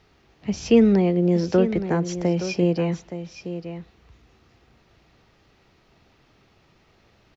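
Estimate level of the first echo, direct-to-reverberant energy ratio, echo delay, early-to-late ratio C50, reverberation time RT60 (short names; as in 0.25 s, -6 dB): -11.0 dB, none, 0.87 s, none, none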